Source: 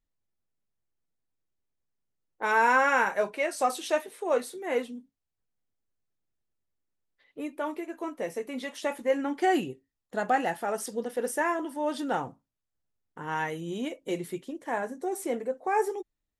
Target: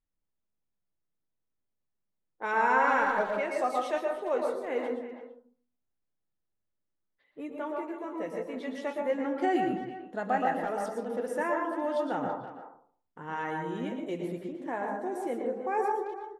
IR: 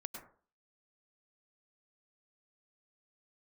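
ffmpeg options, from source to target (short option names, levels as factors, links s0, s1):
-filter_complex "[0:a]lowpass=f=2600:p=1,asplit=2[s0][s1];[s1]adelay=330,highpass=300,lowpass=3400,asoftclip=type=hard:threshold=0.106,volume=0.251[s2];[s0][s2]amix=inputs=2:normalize=0[s3];[1:a]atrim=start_sample=2205,asetrate=37926,aresample=44100[s4];[s3][s4]afir=irnorm=-1:irlink=0"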